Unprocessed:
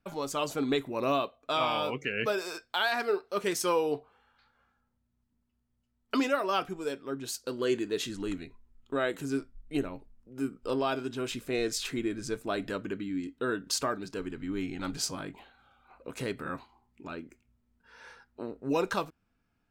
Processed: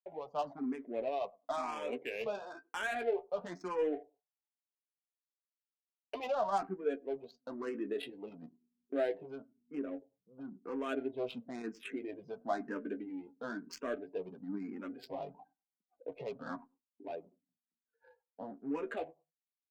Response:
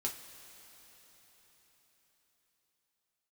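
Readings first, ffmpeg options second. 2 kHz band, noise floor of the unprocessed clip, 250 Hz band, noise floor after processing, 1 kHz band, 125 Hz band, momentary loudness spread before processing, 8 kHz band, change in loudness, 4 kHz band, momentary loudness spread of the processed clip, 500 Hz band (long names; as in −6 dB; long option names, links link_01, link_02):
−9.5 dB, −77 dBFS, −7.5 dB, below −85 dBFS, −6.5 dB, −14.0 dB, 14 LU, below −20 dB, −7.5 dB, −16.5 dB, 13 LU, −5.5 dB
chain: -filter_complex "[0:a]aemphasis=mode=reproduction:type=bsi,afftdn=noise_reduction=25:noise_floor=-45,agate=range=-13dB:threshold=-57dB:ratio=16:detection=peak,alimiter=limit=-23dB:level=0:latency=1:release=35,dynaudnorm=framelen=730:gausssize=5:maxgain=5dB,flanger=delay=5.3:depth=9.4:regen=26:speed=0.19:shape=triangular,highpass=frequency=250:width=0.5412,highpass=frequency=250:width=1.3066,equalizer=frequency=340:width_type=q:width=4:gain=-8,equalizer=frequency=720:width_type=q:width=4:gain=8,equalizer=frequency=1300:width_type=q:width=4:gain=-7,lowpass=frequency=7700:width=0.5412,lowpass=frequency=7700:width=1.3066,asplit=2[link_01][link_02];[link_02]adelay=99,lowpass=frequency=890:poles=1,volume=-23.5dB,asplit=2[link_03][link_04];[link_04]adelay=99,lowpass=frequency=890:poles=1,volume=0.19[link_05];[link_01][link_03][link_05]amix=inputs=3:normalize=0,adynamicsmooth=sensitivity=7.5:basefreq=1100,asplit=2[link_06][link_07];[link_07]afreqshift=1[link_08];[link_06][link_08]amix=inputs=2:normalize=1,volume=-1dB"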